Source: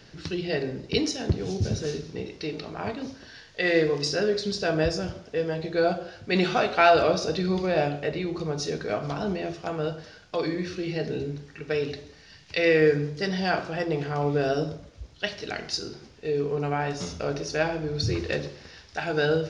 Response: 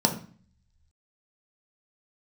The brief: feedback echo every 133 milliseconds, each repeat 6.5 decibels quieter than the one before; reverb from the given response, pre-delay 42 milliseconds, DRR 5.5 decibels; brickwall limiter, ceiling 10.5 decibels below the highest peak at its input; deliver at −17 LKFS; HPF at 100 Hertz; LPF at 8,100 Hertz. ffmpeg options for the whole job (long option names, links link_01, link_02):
-filter_complex "[0:a]highpass=100,lowpass=8100,alimiter=limit=-16dB:level=0:latency=1,aecho=1:1:133|266|399|532|665|798:0.473|0.222|0.105|0.0491|0.0231|0.0109,asplit=2[link_01][link_02];[1:a]atrim=start_sample=2205,adelay=42[link_03];[link_02][link_03]afir=irnorm=-1:irlink=0,volume=-18dB[link_04];[link_01][link_04]amix=inputs=2:normalize=0,volume=8.5dB"